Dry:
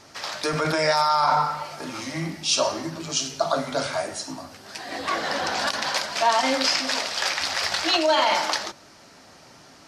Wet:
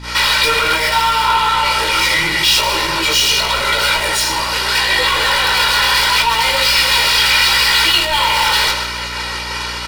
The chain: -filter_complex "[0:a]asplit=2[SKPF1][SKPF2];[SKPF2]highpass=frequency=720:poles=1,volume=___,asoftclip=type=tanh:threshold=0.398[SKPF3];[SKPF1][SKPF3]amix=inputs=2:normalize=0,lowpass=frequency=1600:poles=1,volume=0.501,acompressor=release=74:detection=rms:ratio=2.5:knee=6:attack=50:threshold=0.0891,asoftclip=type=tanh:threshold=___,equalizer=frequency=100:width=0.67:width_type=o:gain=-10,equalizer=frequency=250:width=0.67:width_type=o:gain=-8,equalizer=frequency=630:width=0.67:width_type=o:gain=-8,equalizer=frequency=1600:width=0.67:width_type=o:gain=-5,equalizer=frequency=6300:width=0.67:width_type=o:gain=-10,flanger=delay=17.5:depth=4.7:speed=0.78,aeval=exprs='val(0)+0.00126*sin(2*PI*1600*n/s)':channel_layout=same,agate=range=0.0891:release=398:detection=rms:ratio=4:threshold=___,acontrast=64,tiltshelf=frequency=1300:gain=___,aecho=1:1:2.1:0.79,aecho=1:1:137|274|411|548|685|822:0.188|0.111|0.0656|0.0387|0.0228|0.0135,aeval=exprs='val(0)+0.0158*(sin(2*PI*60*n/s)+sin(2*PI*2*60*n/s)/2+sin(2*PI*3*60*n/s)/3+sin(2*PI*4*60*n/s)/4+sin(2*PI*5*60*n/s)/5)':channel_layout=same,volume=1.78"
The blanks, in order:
63.1, 0.15, 0.0316, -7.5